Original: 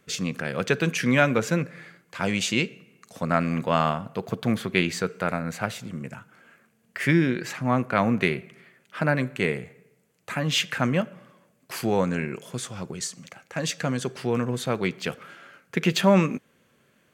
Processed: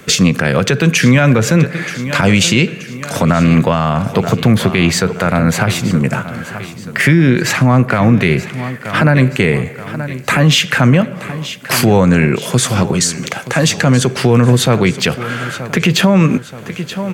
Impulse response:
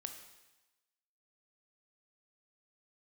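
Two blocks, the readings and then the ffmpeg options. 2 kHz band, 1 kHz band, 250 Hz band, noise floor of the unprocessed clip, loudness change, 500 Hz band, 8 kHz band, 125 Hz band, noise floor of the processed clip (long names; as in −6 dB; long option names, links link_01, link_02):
+12.0 dB, +10.0 dB, +13.5 dB, −65 dBFS, +12.5 dB, +11.0 dB, +16.0 dB, +17.0 dB, −30 dBFS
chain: -filter_complex "[0:a]acrossover=split=130[link_01][link_02];[link_02]acompressor=threshold=-39dB:ratio=2[link_03];[link_01][link_03]amix=inputs=2:normalize=0,asplit=2[link_04][link_05];[link_05]aecho=0:1:927|1854|2781|3708:0.158|0.0745|0.035|0.0165[link_06];[link_04][link_06]amix=inputs=2:normalize=0,alimiter=level_in=25dB:limit=-1dB:release=50:level=0:latency=1,volume=-1dB"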